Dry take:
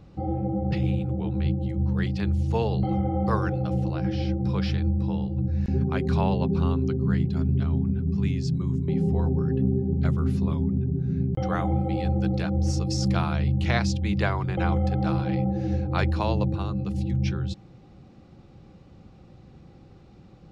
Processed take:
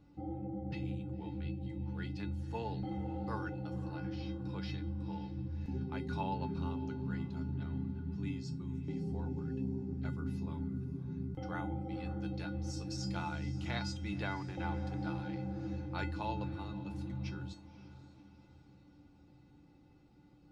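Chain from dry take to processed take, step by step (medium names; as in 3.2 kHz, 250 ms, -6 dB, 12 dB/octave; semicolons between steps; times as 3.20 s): feedback comb 290 Hz, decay 0.23 s, harmonics odd, mix 90%; on a send: echo that smears into a reverb 534 ms, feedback 48%, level -15 dB; on the sum: trim +2.5 dB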